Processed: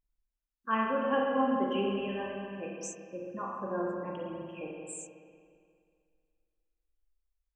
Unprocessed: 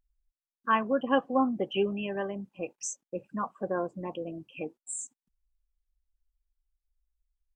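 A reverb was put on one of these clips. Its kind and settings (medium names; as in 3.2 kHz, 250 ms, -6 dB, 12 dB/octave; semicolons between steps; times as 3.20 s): spring tank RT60 2.2 s, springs 31/45 ms, chirp 60 ms, DRR -3 dB; trim -6.5 dB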